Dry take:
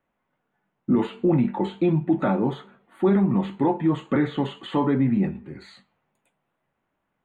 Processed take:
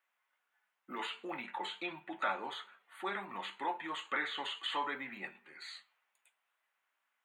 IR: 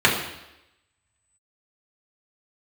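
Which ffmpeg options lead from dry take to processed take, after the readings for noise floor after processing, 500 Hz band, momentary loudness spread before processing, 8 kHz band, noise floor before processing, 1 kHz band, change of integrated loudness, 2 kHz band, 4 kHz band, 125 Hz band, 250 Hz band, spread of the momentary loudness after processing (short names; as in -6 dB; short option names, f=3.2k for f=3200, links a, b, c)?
-84 dBFS, -20.0 dB, 7 LU, n/a, -78 dBFS, -7.5 dB, -16.5 dB, -0.5 dB, +1.5 dB, -37.0 dB, -27.5 dB, 12 LU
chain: -af "highpass=1.5k,volume=1.5dB"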